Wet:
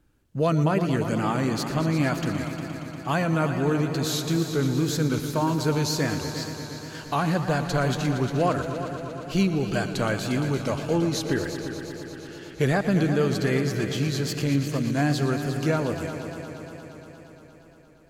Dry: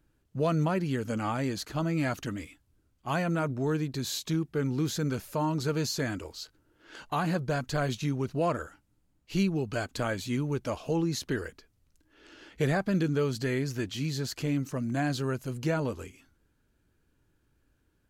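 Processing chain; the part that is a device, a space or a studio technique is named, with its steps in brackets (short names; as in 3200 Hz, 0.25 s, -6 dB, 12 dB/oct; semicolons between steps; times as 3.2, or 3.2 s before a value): multi-head tape echo (multi-head echo 0.117 s, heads all three, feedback 71%, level -14 dB; wow and flutter 47 cents); gain +4.5 dB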